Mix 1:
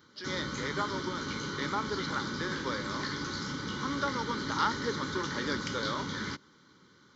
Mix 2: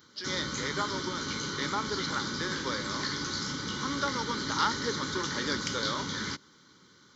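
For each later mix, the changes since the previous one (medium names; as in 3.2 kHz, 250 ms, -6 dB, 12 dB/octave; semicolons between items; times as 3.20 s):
master: add treble shelf 4.5 kHz +11 dB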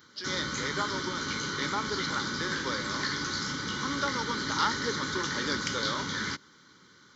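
background: add peaking EQ 1.7 kHz +4.5 dB 1.1 oct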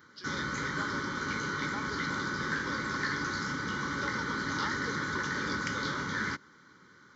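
speech -9.0 dB; background: add resonant high shelf 2.4 kHz -6.5 dB, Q 1.5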